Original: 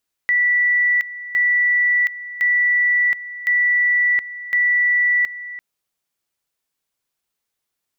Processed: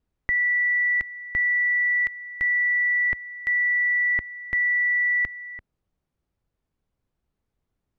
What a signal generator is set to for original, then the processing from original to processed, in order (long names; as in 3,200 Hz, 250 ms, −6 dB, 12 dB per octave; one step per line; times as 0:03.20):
tone at two levels in turn 1,960 Hz −13.5 dBFS, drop 15.5 dB, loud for 0.72 s, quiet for 0.34 s, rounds 5
spectral tilt −5.5 dB per octave